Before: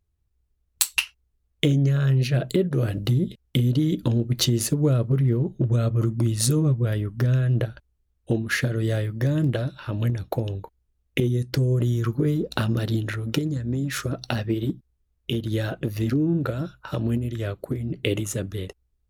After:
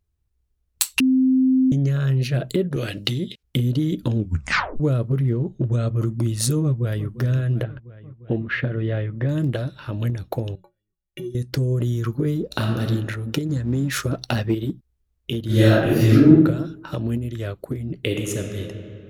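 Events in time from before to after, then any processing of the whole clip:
0:01.00–0:01.72: beep over 260 Hz −13.5 dBFS
0:02.76–0:03.43: meter weighting curve D
0:04.15: tape stop 0.65 s
0:05.32–0:05.94: Butterworth low-pass 9,300 Hz 48 dB per octave
0:06.63–0:07.08: delay throw 350 ms, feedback 75%, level −14 dB
0:07.63–0:09.29: low-pass filter 3,000 Hz 24 dB per octave
0:10.55–0:11.35: stiff-string resonator 170 Hz, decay 0.21 s, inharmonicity 0.03
0:12.46–0:12.87: thrown reverb, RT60 1.2 s, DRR 3 dB
0:13.49–0:14.55: leveller curve on the samples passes 1
0:15.45–0:16.29: thrown reverb, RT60 0.91 s, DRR −11.5 dB
0:18.03–0:18.60: thrown reverb, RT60 2.7 s, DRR 3.5 dB

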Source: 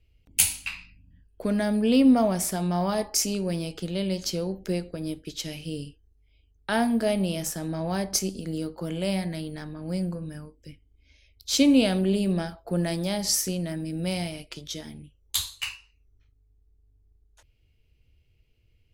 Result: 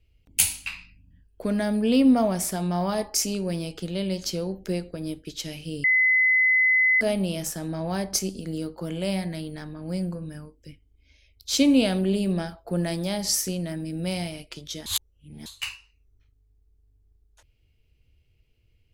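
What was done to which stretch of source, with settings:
0:05.84–0:07.01: beep over 2,030 Hz −16.5 dBFS
0:14.86–0:15.46: reverse

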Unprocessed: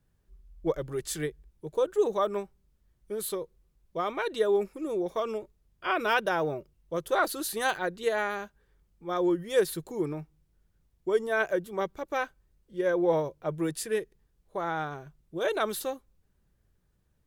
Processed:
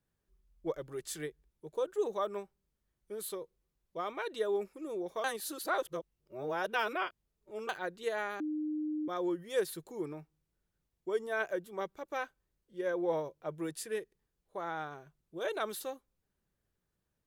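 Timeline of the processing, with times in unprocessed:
0:05.24–0:07.69: reverse
0:08.40–0:09.08: beep over 305 Hz −24 dBFS
whole clip: low-shelf EQ 130 Hz −11 dB; level −6.5 dB

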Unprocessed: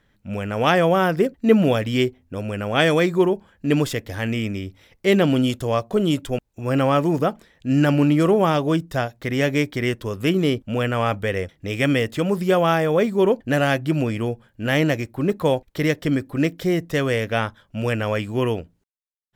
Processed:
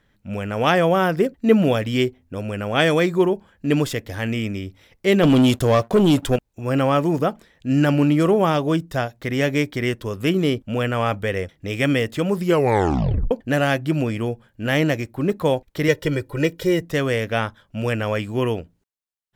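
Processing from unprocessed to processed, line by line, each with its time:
0:05.23–0:06.36: leveller curve on the samples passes 2
0:12.45: tape stop 0.86 s
0:15.88–0:16.82: comb filter 2.1 ms, depth 86%

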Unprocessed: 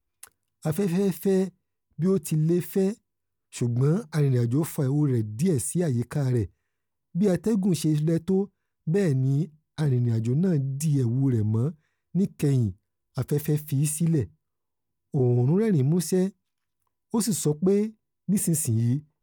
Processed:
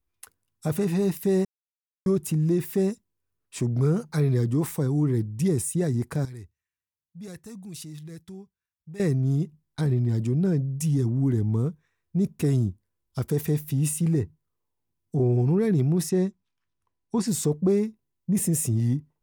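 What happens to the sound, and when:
0:01.45–0:02.06: silence
0:06.25–0:09.00: guitar amp tone stack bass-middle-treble 5-5-5
0:16.09–0:17.28: high-frequency loss of the air 70 metres

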